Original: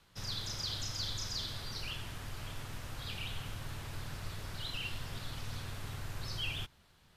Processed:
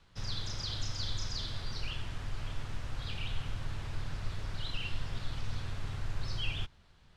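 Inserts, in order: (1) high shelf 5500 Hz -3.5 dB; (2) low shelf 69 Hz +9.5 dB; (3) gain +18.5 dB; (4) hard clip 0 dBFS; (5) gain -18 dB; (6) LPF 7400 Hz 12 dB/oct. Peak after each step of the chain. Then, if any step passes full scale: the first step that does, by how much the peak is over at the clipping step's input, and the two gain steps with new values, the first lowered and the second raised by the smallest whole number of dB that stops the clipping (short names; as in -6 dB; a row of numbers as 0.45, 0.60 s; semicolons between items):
-26.0, -21.5, -3.0, -3.0, -21.0, -21.0 dBFS; no overload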